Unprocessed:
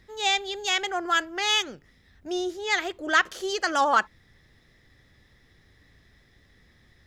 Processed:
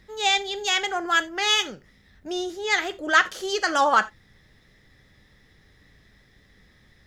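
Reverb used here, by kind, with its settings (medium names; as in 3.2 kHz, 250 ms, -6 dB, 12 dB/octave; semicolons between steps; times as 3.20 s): gated-style reverb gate 110 ms falling, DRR 10.5 dB; trim +2 dB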